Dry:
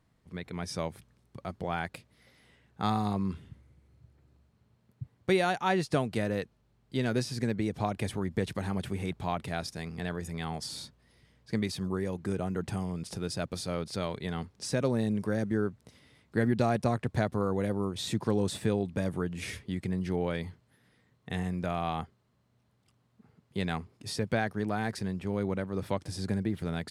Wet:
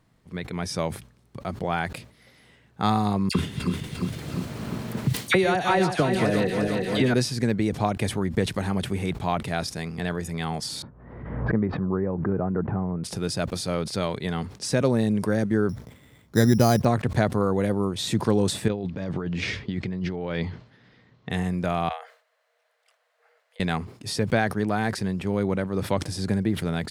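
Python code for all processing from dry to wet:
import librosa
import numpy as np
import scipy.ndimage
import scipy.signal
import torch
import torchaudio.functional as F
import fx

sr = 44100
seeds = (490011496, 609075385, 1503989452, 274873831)

y = fx.chain(x, sr, fx.reverse_delay_fb(ms=175, feedback_pct=61, wet_db=-6.5),
    fx.dispersion(late='lows', ms=59.0, hz=1900.0),
    fx.band_squash(depth_pct=100), at=(3.29, 7.14))
y = fx.chain(y, sr, fx.lowpass(hz=1400.0, slope=24),
    fx.pre_swell(db_per_s=49.0), at=(10.82, 13.04))
y = fx.chain(y, sr, fx.low_shelf(hz=100.0, db=8.5),
    fx.resample_bad(factor=8, down='filtered', up='hold'), at=(15.69, 16.85))
y = fx.chain(y, sr, fx.lowpass(hz=5400.0, slope=24),
    fx.over_compress(threshold_db=-35.0, ratio=-1.0), at=(18.68, 21.31))
y = fx.chain(y, sr, fx.over_compress(threshold_db=-40.0, ratio=-1.0),
    fx.cheby_ripple_highpass(hz=460.0, ripple_db=9), at=(21.89, 23.6))
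y = fx.peak_eq(y, sr, hz=73.0, db=-8.5, octaves=0.28)
y = fx.sustainer(y, sr, db_per_s=130.0)
y = y * 10.0 ** (6.5 / 20.0)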